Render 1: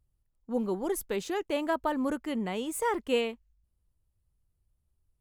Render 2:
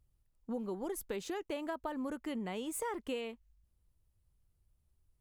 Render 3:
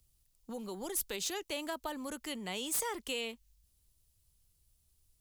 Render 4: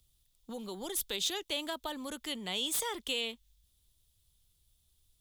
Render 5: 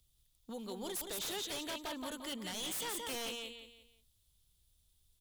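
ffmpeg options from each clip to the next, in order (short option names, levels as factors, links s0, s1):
-af "acompressor=threshold=0.0141:ratio=6,volume=1.12"
-filter_complex "[0:a]acrossover=split=130|500|3200[s0][s1][s2][s3];[s1]alimiter=level_in=6.68:limit=0.0631:level=0:latency=1,volume=0.15[s4];[s3]aeval=exprs='0.0376*sin(PI/2*3.55*val(0)/0.0376)':c=same[s5];[s0][s4][s2][s5]amix=inputs=4:normalize=0"
-af "equalizer=f=3500:w=3.8:g=11.5"
-af "aecho=1:1:174|348|522|696:0.501|0.175|0.0614|0.0215,aeval=exprs='0.0251*(abs(mod(val(0)/0.0251+3,4)-2)-1)':c=same,volume=0.75"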